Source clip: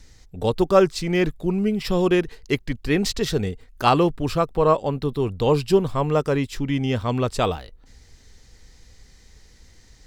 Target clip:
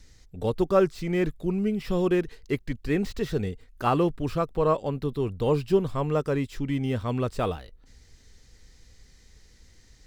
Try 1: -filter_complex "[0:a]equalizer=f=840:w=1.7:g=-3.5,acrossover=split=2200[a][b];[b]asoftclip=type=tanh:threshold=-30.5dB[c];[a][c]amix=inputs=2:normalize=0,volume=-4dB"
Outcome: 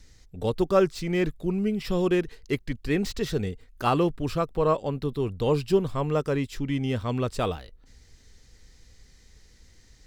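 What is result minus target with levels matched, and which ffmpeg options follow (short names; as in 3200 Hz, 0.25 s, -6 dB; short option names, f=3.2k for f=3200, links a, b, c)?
soft clip: distortion -6 dB
-filter_complex "[0:a]equalizer=f=840:w=1.7:g=-3.5,acrossover=split=2200[a][b];[b]asoftclip=type=tanh:threshold=-40.5dB[c];[a][c]amix=inputs=2:normalize=0,volume=-4dB"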